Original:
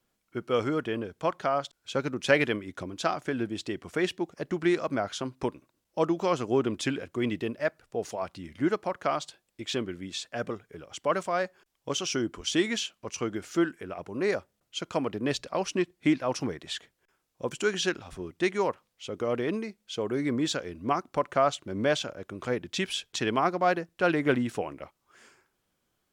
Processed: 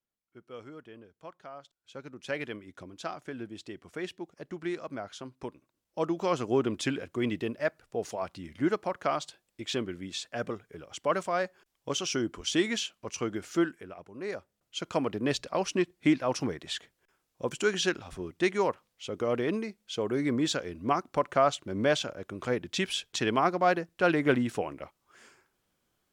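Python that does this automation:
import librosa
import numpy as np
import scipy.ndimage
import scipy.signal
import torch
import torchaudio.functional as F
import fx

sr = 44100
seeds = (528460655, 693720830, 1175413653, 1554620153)

y = fx.gain(x, sr, db=fx.line((1.6, -18.0), (2.64, -9.0), (5.47, -9.0), (6.38, -1.0), (13.61, -1.0), (14.13, -11.0), (14.88, 0.0)))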